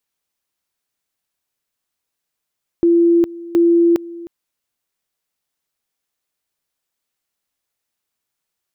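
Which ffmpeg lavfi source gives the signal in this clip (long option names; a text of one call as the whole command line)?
ffmpeg -f lavfi -i "aevalsrc='pow(10,(-9-19.5*gte(mod(t,0.72),0.41))/20)*sin(2*PI*340*t)':duration=1.44:sample_rate=44100" out.wav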